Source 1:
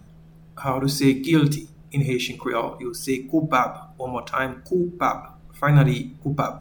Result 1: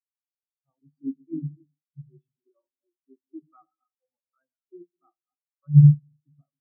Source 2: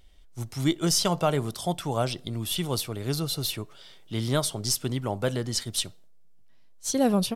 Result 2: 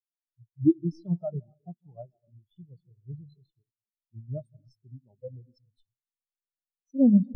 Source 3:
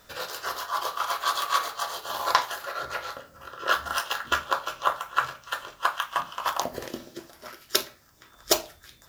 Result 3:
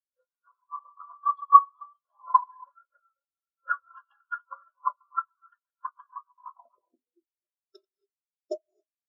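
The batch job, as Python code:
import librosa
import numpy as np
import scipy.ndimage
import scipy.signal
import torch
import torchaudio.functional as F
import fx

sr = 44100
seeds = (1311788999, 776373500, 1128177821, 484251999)

y = fx.reverse_delay(x, sr, ms=104, wet_db=-10)
y = fx.rev_gated(y, sr, seeds[0], gate_ms=310, shape='rising', drr_db=8.0)
y = fx.spectral_expand(y, sr, expansion=4.0)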